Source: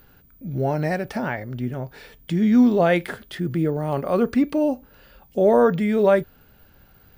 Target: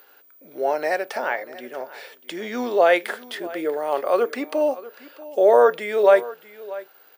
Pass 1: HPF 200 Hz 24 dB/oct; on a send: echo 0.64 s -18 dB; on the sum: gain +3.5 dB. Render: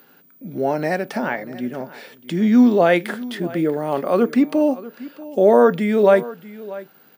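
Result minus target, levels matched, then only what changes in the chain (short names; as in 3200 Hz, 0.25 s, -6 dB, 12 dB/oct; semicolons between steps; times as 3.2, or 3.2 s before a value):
250 Hz band +12.0 dB
change: HPF 420 Hz 24 dB/oct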